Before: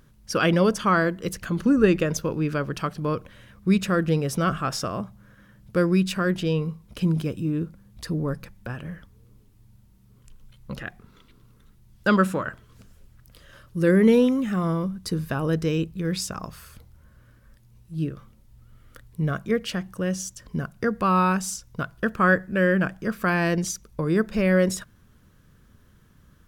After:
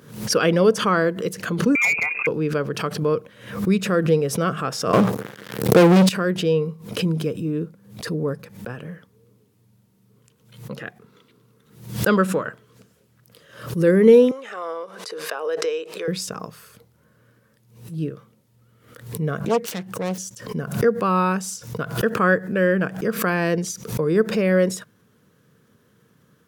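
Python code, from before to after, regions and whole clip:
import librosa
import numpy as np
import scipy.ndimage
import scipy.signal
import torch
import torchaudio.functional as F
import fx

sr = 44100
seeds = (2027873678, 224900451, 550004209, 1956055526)

y = fx.chain(x, sr, fx.freq_invert(carrier_hz=2600),
    fx.clip_hard(threshold_db=-15.5), at=(1.75, 2.27))
y = fx.chain(y, sr, fx.leveller(passes=5),
    fx.sustainer(db_per_s=86.0), at=(4.93, 6.09))
y = fx.chain(y, sr, fx.highpass(hz=500.0, slope=24),
    fx.air_absorb(metres=56.0),
    fx.pre_swell(db_per_s=59.0), at=(14.31, 16.08))
y = fx.chain(y, sr, fx.self_delay(depth_ms=0.76),
    fx.band_widen(depth_pct=40), at=(19.39, 20.18))
y = scipy.signal.sosfilt(scipy.signal.butter(4, 120.0, 'highpass', fs=sr, output='sos'), y)
y = fx.peak_eq(y, sr, hz=460.0, db=9.5, octaves=0.34)
y = fx.pre_swell(y, sr, db_per_s=100.0)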